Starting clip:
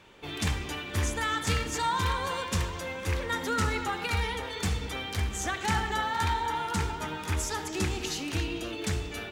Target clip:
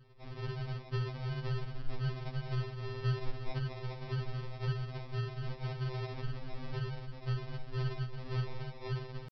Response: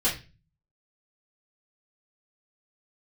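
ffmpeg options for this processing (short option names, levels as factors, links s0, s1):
-af "acompressor=threshold=0.0355:ratio=16,asetrate=80880,aresample=44100,atempo=0.545254,aresample=11025,acrusher=samples=39:mix=1:aa=0.000001,aresample=44100,afftfilt=real='re*2.45*eq(mod(b,6),0)':imag='im*2.45*eq(mod(b,6),0)':win_size=2048:overlap=0.75"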